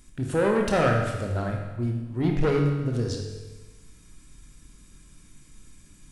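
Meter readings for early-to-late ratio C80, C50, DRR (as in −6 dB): 5.5 dB, 3.5 dB, 1.0 dB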